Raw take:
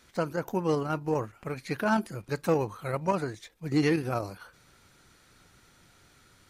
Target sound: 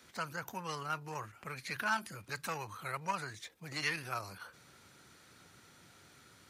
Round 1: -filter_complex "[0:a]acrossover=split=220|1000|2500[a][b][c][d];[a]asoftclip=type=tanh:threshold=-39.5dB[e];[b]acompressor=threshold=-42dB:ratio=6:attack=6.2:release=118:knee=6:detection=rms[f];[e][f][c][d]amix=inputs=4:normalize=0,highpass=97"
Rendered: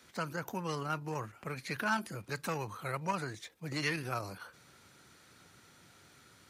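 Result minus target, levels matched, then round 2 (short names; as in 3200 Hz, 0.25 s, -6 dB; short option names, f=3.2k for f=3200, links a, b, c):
compressor: peak gain reduction -10 dB; soft clip: distortion -4 dB
-filter_complex "[0:a]acrossover=split=220|1000|2500[a][b][c][d];[a]asoftclip=type=tanh:threshold=-47.5dB[e];[b]acompressor=threshold=-54dB:ratio=6:attack=6.2:release=118:knee=6:detection=rms[f];[e][f][c][d]amix=inputs=4:normalize=0,highpass=97"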